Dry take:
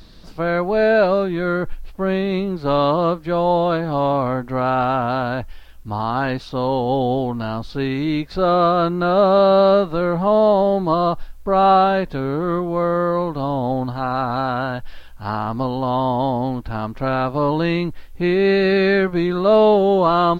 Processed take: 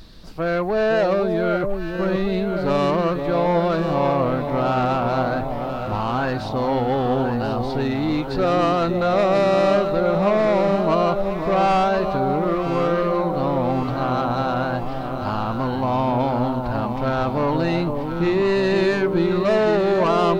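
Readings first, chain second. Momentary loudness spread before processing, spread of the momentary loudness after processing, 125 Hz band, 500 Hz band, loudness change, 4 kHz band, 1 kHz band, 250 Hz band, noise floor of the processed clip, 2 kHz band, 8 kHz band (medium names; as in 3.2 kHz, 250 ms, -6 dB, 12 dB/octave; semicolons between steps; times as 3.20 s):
11 LU, 6 LU, -0.5 dB, -2.0 dB, -2.0 dB, -2.0 dB, -2.5 dB, -1.0 dB, -27 dBFS, -1.5 dB, no reading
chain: saturation -15 dBFS, distortion -12 dB; echo whose repeats swap between lows and highs 518 ms, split 900 Hz, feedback 72%, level -5 dB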